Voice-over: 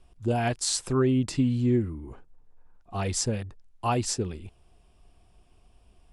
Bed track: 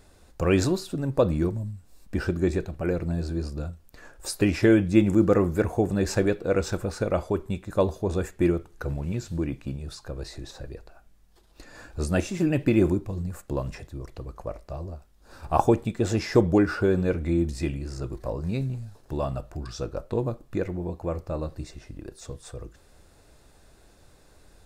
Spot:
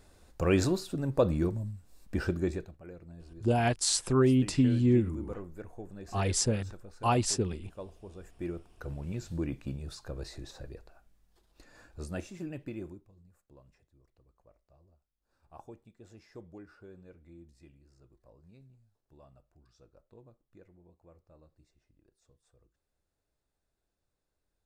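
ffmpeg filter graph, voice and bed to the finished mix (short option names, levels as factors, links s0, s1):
-filter_complex "[0:a]adelay=3200,volume=0.944[s0];[1:a]volume=4.22,afade=t=out:st=2.29:d=0.51:silence=0.141254,afade=t=in:st=8.22:d=1.32:silence=0.149624,afade=t=out:st=10.16:d=2.95:silence=0.0595662[s1];[s0][s1]amix=inputs=2:normalize=0"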